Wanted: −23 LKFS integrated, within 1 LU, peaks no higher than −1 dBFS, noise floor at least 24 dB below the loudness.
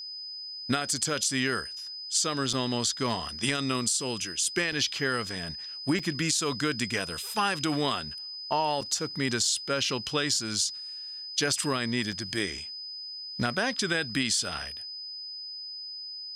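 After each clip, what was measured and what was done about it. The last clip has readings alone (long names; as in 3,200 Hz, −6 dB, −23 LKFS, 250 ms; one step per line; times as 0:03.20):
number of dropouts 5; longest dropout 4.8 ms; interfering tone 5,000 Hz; level of the tone −37 dBFS; integrated loudness −29.0 LKFS; sample peak −10.5 dBFS; target loudness −23.0 LKFS
→ repair the gap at 0:02.53/0:04.72/0:05.99/0:08.81/0:12.12, 4.8 ms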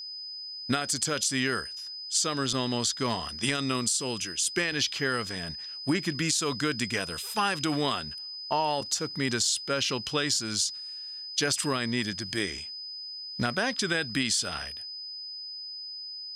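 number of dropouts 0; interfering tone 5,000 Hz; level of the tone −37 dBFS
→ notch filter 5,000 Hz, Q 30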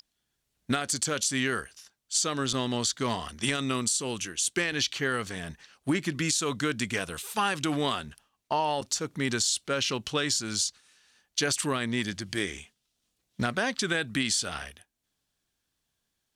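interfering tone none found; integrated loudness −28.5 LKFS; sample peak −11.0 dBFS; target loudness −23.0 LKFS
→ level +5.5 dB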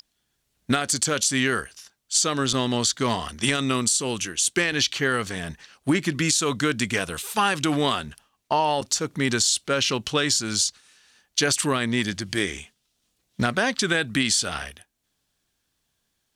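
integrated loudness −23.0 LKFS; sample peak −5.5 dBFS; background noise floor −75 dBFS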